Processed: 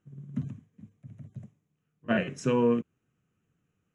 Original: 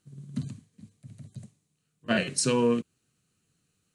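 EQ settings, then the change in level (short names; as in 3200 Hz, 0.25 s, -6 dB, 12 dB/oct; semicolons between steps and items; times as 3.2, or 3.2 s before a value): running mean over 10 samples; 0.0 dB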